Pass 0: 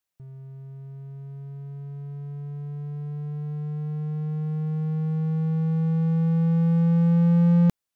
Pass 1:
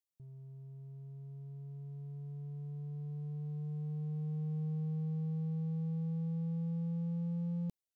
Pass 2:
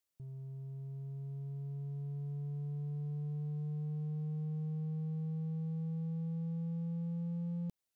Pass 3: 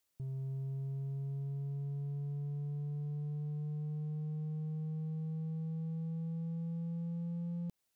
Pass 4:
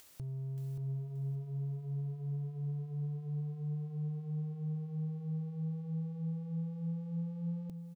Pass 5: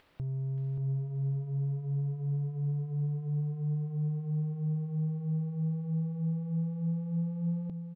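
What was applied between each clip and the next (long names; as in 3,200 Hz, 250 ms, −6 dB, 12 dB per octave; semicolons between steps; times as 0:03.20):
parametric band 1,500 Hz −14.5 dB 1.3 octaves; brickwall limiter −23 dBFS, peak gain reduction 10 dB; level −9 dB
downward compressor, threshold −41 dBFS, peak gain reduction 6.5 dB; level +5 dB
brickwall limiter −40.5 dBFS, peak gain reduction 7 dB; level +6 dB
upward compression, threshold −42 dBFS; on a send: repeating echo 578 ms, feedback 29%, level −7.5 dB
high-frequency loss of the air 420 metres; level +6 dB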